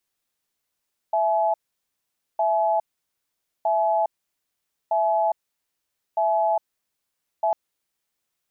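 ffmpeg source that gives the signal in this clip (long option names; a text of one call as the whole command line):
ffmpeg -f lavfi -i "aevalsrc='0.0891*(sin(2*PI*662*t)+sin(2*PI*851*t))*clip(min(mod(t,1.26),0.41-mod(t,1.26))/0.005,0,1)':duration=6.4:sample_rate=44100" out.wav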